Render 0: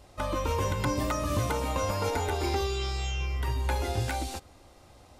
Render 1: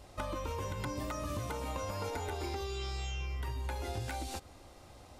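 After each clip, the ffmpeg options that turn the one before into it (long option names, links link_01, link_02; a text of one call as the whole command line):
ffmpeg -i in.wav -af "acompressor=threshold=-35dB:ratio=6" out.wav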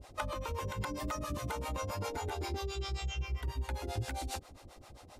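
ffmpeg -i in.wav -filter_complex "[0:a]acrossover=split=460[link_01][link_02];[link_01]aeval=exprs='val(0)*(1-1/2+1/2*cos(2*PI*7.5*n/s))':channel_layout=same[link_03];[link_02]aeval=exprs='val(0)*(1-1/2-1/2*cos(2*PI*7.5*n/s))':channel_layout=same[link_04];[link_03][link_04]amix=inputs=2:normalize=0,volume=5dB" out.wav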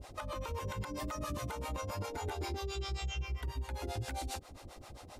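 ffmpeg -i in.wav -af "alimiter=level_in=9dB:limit=-24dB:level=0:latency=1:release=222,volume=-9dB,volume=3dB" out.wav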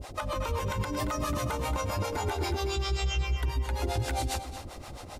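ffmpeg -i in.wav -filter_complex "[0:a]asplit=2[link_01][link_02];[link_02]adelay=227.4,volume=-9dB,highshelf=frequency=4000:gain=-5.12[link_03];[link_01][link_03]amix=inputs=2:normalize=0,volume=8dB" out.wav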